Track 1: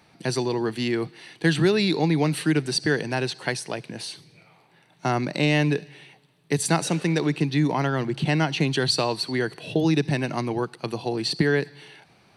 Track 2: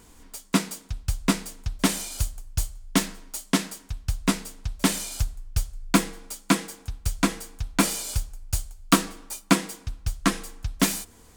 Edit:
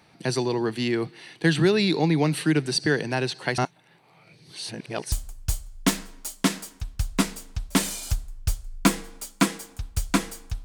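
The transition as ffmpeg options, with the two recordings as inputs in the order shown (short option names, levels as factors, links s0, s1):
-filter_complex "[0:a]apad=whole_dur=10.64,atrim=end=10.64,asplit=2[s0][s1];[s0]atrim=end=3.582[s2];[s1]atrim=start=3.578:end=5.122,asetpts=PTS-STARTPTS,areverse[s3];[1:a]atrim=start=2.208:end=7.73[s4];[s2][s3]acrossfade=d=0.004:c1=hsin:c2=hsin[s5];[s5][s4]acrossfade=d=0.004:c1=hsin:c2=hsin"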